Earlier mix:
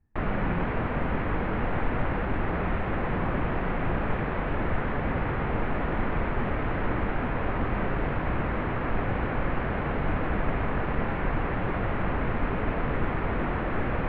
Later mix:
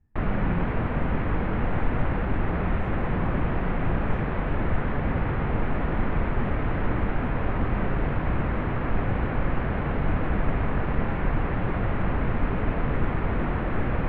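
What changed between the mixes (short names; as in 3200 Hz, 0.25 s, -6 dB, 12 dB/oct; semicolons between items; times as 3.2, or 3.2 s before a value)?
background: add air absorption 160 m; master: add tone controls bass +4 dB, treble +9 dB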